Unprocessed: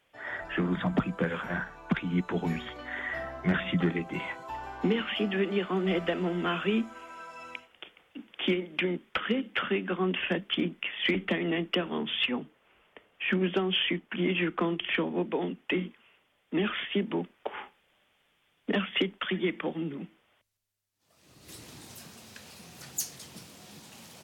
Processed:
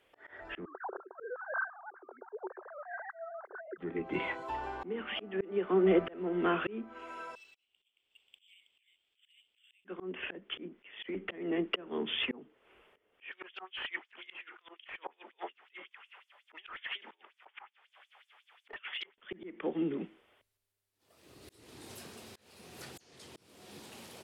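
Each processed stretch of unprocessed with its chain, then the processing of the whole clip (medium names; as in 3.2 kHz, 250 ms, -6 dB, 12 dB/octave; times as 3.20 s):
0.65–3.78 s: formants replaced by sine waves + Chebyshev band-pass 370–1600 Hz, order 5
7.35–9.85 s: steep high-pass 2.8 kHz + compression 5:1, threshold -44 dBFS + decimation joined by straight lines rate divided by 4×
13.31–19.18 s: LFO high-pass sine 5.5 Hz 780–7100 Hz + overdrive pedal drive 18 dB, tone 1.2 kHz, clips at -12 dBFS
whole clip: low-pass that closes with the level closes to 1.9 kHz, closed at -25.5 dBFS; fifteen-band graphic EQ 160 Hz -6 dB, 400 Hz +7 dB, 6.3 kHz -5 dB; slow attack 434 ms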